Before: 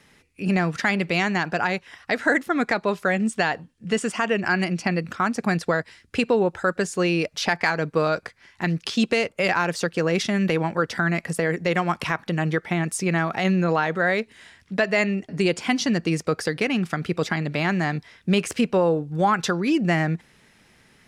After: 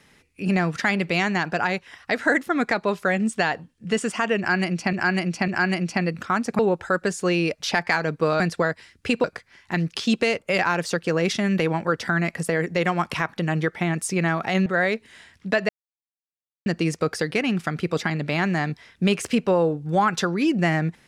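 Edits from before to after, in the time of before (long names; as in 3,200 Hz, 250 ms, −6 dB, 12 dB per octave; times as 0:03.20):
0:04.38–0:04.93: repeat, 3 plays
0:05.49–0:06.33: move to 0:08.14
0:13.56–0:13.92: remove
0:14.95–0:15.92: silence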